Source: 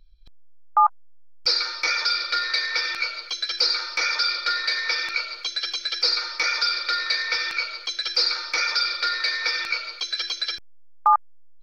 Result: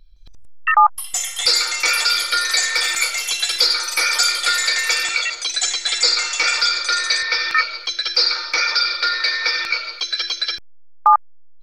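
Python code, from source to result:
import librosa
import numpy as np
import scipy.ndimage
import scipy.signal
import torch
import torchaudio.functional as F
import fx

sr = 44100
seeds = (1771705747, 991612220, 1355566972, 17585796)

y = fx.echo_pitch(x, sr, ms=164, semitones=7, count=2, db_per_echo=-6.0)
y = y * librosa.db_to_amplitude(5.0)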